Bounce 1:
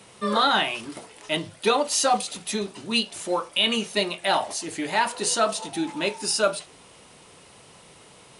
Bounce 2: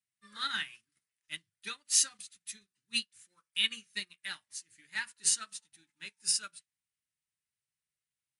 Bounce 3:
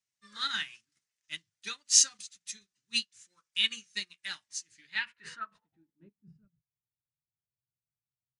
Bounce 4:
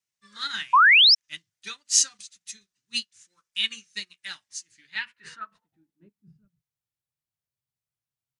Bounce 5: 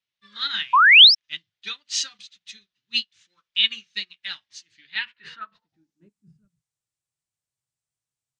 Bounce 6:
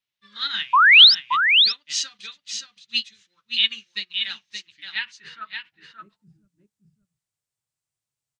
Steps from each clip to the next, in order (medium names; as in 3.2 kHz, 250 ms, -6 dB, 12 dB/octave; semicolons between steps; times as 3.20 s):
FFT filter 130 Hz 0 dB, 690 Hz -26 dB, 1.7 kHz +5 dB, 3.1 kHz 0 dB, 7.7 kHz +6 dB; upward expansion 2.5:1, over -44 dBFS; trim -5 dB
low-pass sweep 6.4 kHz -> 130 Hz, 4.69–6.45 s
wow and flutter 28 cents; painted sound rise, 0.73–1.15 s, 940–5600 Hz -16 dBFS; trim +1.5 dB
low-pass sweep 3.5 kHz -> 8.3 kHz, 5.43–6.13 s
delay 574 ms -6 dB